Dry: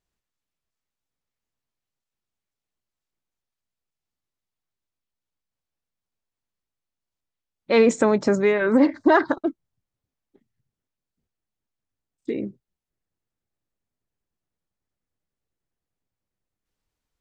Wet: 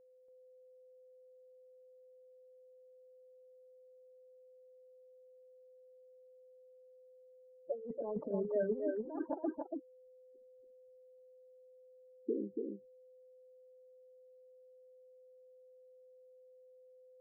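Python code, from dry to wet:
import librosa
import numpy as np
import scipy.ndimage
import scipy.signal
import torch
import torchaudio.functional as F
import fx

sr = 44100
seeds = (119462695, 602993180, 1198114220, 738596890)

y = fx.law_mismatch(x, sr, coded='A')
y = fx.peak_eq(y, sr, hz=160.0, db=-6.0, octaves=1.3)
y = fx.spec_gate(y, sr, threshold_db=-10, keep='strong')
y = fx.over_compress(y, sr, threshold_db=-25.0, ratio=-0.5)
y = fx.ladder_lowpass(y, sr, hz=1000.0, resonance_pct=40)
y = y + 10.0 ** (-57.0 / 20.0) * np.sin(2.0 * np.pi * 510.0 * np.arange(len(y)) / sr)
y = y + 10.0 ** (-4.0 / 20.0) * np.pad(y, (int(284 * sr / 1000.0), 0))[:len(y)]
y = F.gain(torch.from_numpy(y), -4.5).numpy()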